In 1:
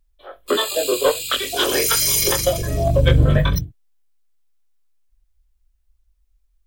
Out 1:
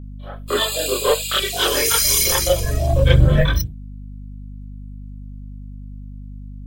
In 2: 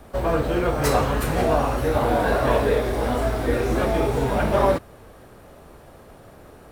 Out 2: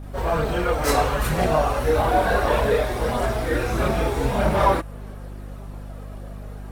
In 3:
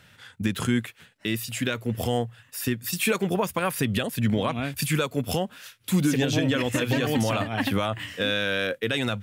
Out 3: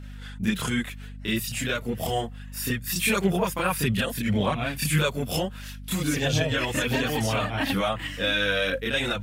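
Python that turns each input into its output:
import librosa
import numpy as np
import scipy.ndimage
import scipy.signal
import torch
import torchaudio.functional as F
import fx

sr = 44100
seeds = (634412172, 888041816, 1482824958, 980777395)

y = fx.chorus_voices(x, sr, voices=4, hz=0.27, base_ms=29, depth_ms=3.5, mix_pct=65)
y = fx.add_hum(y, sr, base_hz=50, snr_db=15)
y = fx.dynamic_eq(y, sr, hz=280.0, q=0.81, threshold_db=-35.0, ratio=4.0, max_db=-5)
y = y * 10.0 ** (4.5 / 20.0)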